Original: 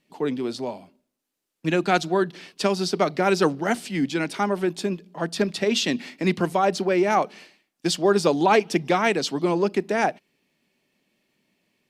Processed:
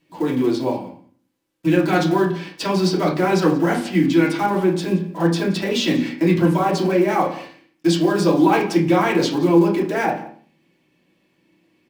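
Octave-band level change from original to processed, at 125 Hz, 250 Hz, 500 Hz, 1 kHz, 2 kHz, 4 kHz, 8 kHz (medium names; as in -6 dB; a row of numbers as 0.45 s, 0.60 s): +9.0 dB, +8.0 dB, +3.0 dB, +2.5 dB, +2.0 dB, +1.5 dB, -0.5 dB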